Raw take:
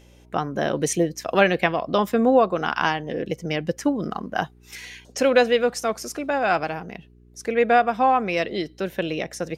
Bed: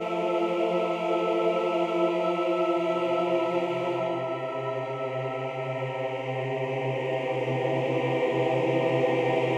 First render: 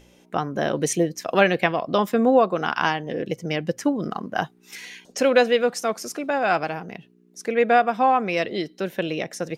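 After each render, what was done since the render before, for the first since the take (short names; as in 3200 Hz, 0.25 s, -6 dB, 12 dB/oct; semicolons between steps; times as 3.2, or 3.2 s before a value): de-hum 60 Hz, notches 2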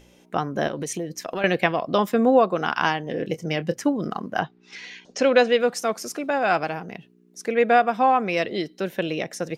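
0.67–1.44 compressor 4:1, threshold -26 dBFS; 3.11–3.76 doubler 25 ms -13 dB; 4.39–5.58 LPF 4400 Hz -> 8100 Hz 24 dB/oct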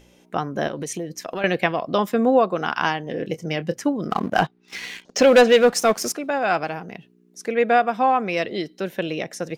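4.1–6.13 sample leveller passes 2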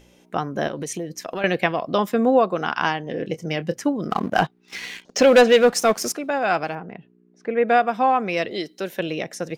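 2.63–3.37 Bessel low-pass 7900 Hz; 6.75–7.68 LPF 1900 Hz; 8.51–9 tone controls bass -6 dB, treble +5 dB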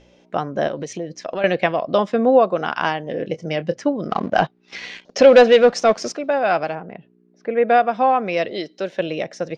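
LPF 5800 Hz 24 dB/oct; bell 590 Hz +6.5 dB 0.5 oct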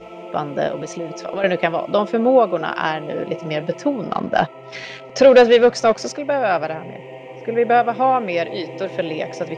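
add bed -8 dB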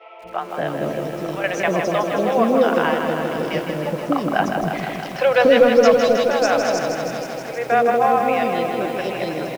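three bands offset in time mids, lows, highs 0.24/0.67 s, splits 580/3700 Hz; lo-fi delay 0.159 s, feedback 80%, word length 7-bit, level -6 dB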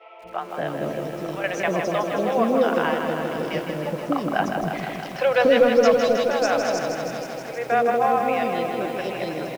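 gain -3.5 dB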